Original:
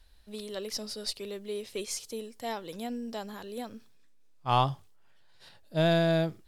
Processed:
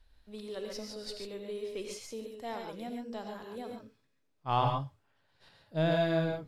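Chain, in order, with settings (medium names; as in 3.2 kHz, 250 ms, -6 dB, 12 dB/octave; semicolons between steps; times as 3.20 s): treble shelf 4.6 kHz -11 dB; gated-style reverb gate 160 ms rising, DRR 2 dB; trim -4 dB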